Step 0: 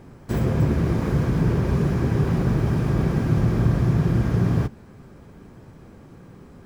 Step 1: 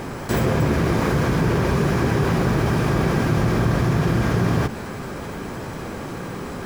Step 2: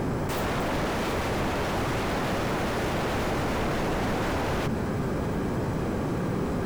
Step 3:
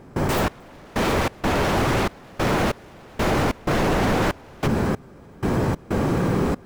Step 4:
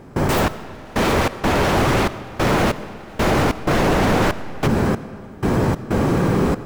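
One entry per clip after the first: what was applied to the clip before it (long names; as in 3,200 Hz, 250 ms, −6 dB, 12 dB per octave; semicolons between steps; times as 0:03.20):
low-shelf EQ 350 Hz −11.5 dB; envelope flattener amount 50%; level +8 dB
wave folding −24 dBFS; tilt shelving filter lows +4.5 dB
gate pattern ".xx...xx.xxxx." 94 BPM −24 dB; level +7 dB
comb and all-pass reverb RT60 2.2 s, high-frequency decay 0.7×, pre-delay 45 ms, DRR 14.5 dB; level +3.5 dB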